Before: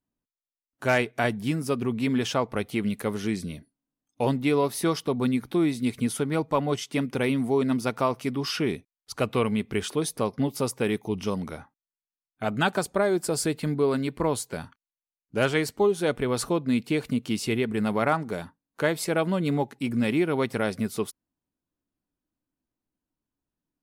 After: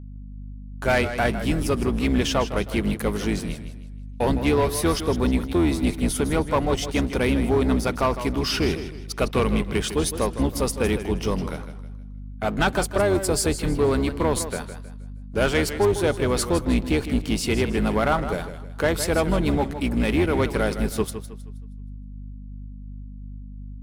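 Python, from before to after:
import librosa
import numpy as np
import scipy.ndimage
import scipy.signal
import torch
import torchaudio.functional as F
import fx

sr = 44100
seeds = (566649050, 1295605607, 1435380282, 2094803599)

y = fx.octave_divider(x, sr, octaves=2, level_db=3.0)
y = fx.low_shelf(y, sr, hz=170.0, db=-8.0)
y = fx.leveller(y, sr, passes=2)
y = fx.add_hum(y, sr, base_hz=50, snr_db=14)
y = fx.echo_warbled(y, sr, ms=158, feedback_pct=35, rate_hz=2.8, cents=92, wet_db=-11)
y = y * 10.0 ** (-2.5 / 20.0)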